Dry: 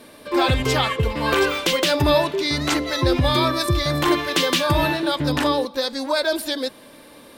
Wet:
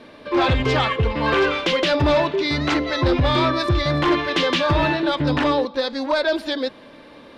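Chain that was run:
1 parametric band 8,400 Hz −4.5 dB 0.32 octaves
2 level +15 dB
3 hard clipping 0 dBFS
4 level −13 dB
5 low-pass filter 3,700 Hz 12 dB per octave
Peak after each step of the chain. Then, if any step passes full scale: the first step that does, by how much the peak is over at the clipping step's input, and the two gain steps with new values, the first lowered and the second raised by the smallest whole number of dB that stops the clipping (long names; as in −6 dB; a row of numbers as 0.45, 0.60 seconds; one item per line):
−6.0, +9.0, 0.0, −13.0, −12.5 dBFS
step 2, 9.0 dB
step 2 +6 dB, step 4 −4 dB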